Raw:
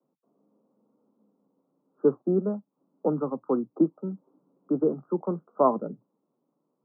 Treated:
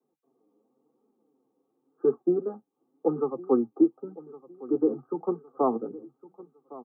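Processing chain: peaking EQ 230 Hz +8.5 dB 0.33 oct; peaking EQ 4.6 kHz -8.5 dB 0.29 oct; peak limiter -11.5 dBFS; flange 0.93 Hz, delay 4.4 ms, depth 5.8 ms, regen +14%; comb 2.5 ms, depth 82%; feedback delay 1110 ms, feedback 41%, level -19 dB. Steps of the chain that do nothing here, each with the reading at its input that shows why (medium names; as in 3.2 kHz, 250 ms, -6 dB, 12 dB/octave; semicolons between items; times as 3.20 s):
peaking EQ 4.6 kHz: input has nothing above 1.2 kHz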